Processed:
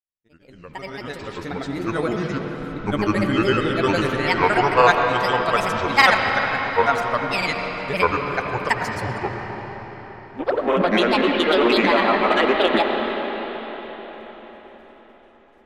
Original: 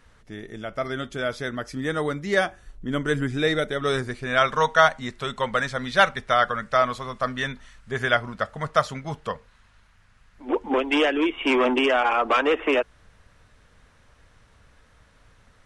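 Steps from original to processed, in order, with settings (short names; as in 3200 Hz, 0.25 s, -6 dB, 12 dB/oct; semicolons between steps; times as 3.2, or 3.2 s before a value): opening faded in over 1.78 s; expander -45 dBFS; grains, pitch spread up and down by 7 st; on a send: reverb RT60 5.0 s, pre-delay 50 ms, DRR 2.5 dB; on the sum: gain +3 dB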